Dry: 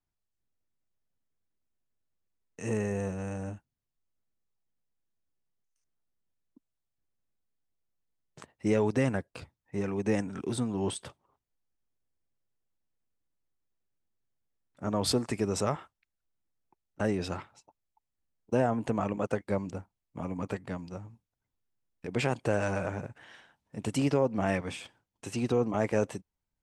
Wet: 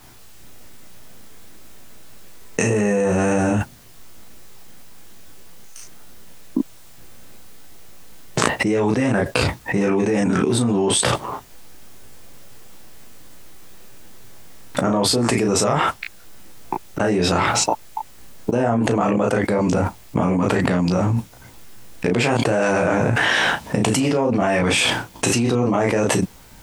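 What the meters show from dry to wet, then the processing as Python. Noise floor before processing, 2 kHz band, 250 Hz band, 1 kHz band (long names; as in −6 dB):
below −85 dBFS, +17.5 dB, +12.5 dB, +15.0 dB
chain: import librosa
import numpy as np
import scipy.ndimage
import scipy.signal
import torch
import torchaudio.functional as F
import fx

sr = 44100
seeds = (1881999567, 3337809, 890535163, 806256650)

y = fx.low_shelf(x, sr, hz=110.0, db=-6.5)
y = fx.room_early_taps(y, sr, ms=(16, 34), db=(-5.0, -3.0))
y = fx.env_flatten(y, sr, amount_pct=100)
y = y * librosa.db_to_amplitude(2.0)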